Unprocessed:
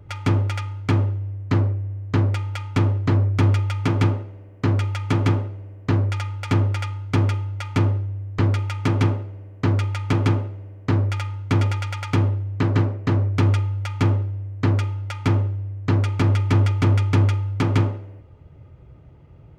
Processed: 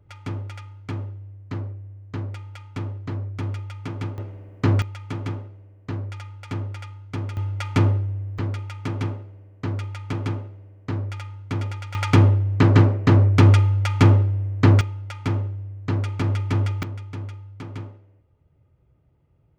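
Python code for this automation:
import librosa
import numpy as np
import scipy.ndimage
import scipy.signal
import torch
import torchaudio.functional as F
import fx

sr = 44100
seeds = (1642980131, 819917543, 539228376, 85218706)

y = fx.gain(x, sr, db=fx.steps((0.0, -11.0), (4.18, 1.0), (4.82, -10.0), (7.37, 1.0), (8.38, -7.5), (11.95, 5.0), (14.81, -4.5), (16.83, -15.5)))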